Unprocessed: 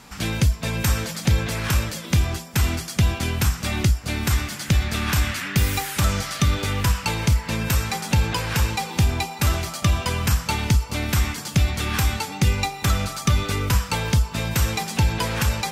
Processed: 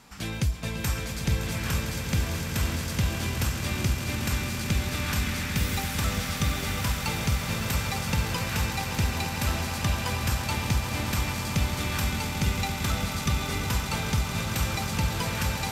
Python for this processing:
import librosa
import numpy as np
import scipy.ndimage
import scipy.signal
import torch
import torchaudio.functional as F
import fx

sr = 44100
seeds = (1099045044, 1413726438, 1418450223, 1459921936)

y = fx.echo_swell(x, sr, ms=113, loudest=8, wet_db=-11.0)
y = F.gain(torch.from_numpy(y), -7.5).numpy()